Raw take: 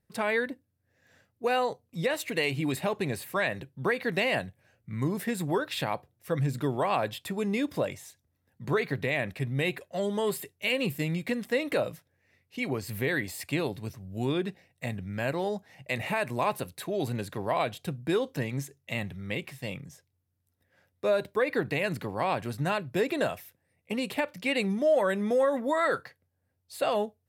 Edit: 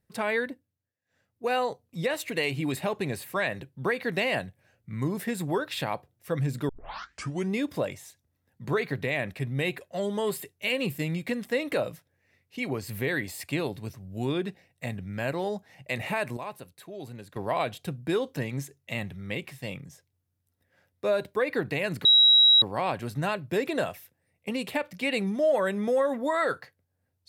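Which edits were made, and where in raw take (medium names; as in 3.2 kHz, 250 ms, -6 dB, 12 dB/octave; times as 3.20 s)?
0.46–1.52 s: dip -23.5 dB, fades 0.47 s
6.69 s: tape start 0.83 s
16.37–17.36 s: gain -10 dB
22.05 s: add tone 3.86 kHz -14 dBFS 0.57 s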